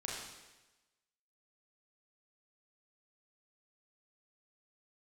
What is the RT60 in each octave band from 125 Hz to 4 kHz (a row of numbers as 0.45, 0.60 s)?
1.1, 1.1, 1.1, 1.1, 1.1, 1.1 s